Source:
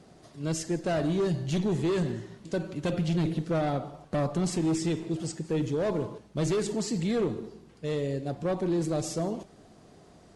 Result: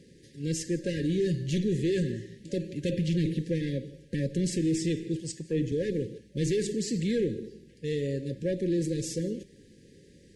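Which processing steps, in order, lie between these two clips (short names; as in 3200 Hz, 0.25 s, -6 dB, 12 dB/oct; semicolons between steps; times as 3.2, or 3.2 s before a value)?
FFT band-reject 570–1600 Hz; 5.2–5.72 three-band expander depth 70%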